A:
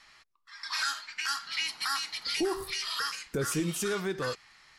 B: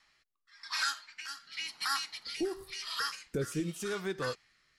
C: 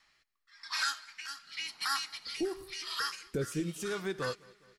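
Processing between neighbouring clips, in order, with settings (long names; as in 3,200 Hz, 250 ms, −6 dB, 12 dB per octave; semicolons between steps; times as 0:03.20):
rotating-speaker cabinet horn 0.9 Hz; expander for the loud parts 1.5 to 1, over −42 dBFS
repeating echo 205 ms, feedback 57%, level −24 dB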